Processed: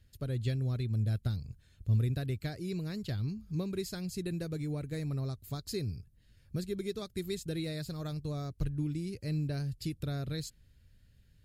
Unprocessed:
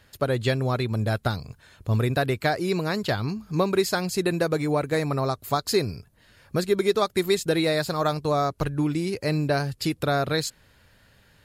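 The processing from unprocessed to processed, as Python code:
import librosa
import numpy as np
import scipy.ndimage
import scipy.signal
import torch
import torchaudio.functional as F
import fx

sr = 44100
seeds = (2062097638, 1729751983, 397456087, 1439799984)

y = fx.tone_stack(x, sr, knobs='10-0-1')
y = y * librosa.db_to_amplitude(7.5)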